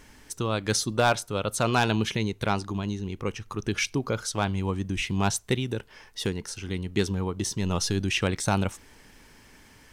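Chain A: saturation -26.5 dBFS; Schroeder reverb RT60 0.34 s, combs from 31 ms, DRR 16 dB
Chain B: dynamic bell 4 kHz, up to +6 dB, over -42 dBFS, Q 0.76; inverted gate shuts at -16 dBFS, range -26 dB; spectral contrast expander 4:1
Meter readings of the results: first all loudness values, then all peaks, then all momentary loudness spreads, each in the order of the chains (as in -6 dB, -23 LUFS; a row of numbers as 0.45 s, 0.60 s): -32.5 LUFS, -34.5 LUFS; -24.0 dBFS, -13.5 dBFS; 6 LU, 22 LU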